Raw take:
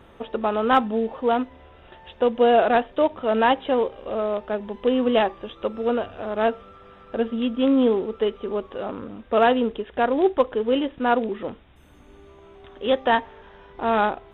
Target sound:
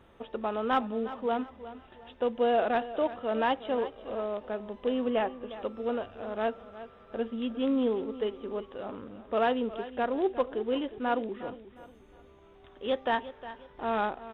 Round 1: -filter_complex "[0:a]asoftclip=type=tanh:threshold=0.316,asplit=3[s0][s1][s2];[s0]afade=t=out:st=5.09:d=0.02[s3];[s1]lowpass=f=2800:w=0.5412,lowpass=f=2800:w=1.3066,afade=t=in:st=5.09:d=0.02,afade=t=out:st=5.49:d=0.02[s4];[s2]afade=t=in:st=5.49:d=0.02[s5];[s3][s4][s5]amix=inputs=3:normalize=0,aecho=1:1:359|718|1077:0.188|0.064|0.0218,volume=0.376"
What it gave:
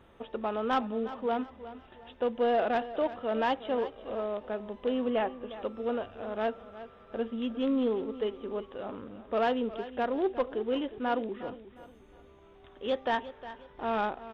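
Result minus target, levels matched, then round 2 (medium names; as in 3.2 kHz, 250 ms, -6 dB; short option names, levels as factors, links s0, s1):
saturation: distortion +13 dB
-filter_complex "[0:a]asoftclip=type=tanh:threshold=0.75,asplit=3[s0][s1][s2];[s0]afade=t=out:st=5.09:d=0.02[s3];[s1]lowpass=f=2800:w=0.5412,lowpass=f=2800:w=1.3066,afade=t=in:st=5.09:d=0.02,afade=t=out:st=5.49:d=0.02[s4];[s2]afade=t=in:st=5.49:d=0.02[s5];[s3][s4][s5]amix=inputs=3:normalize=0,aecho=1:1:359|718|1077:0.188|0.064|0.0218,volume=0.376"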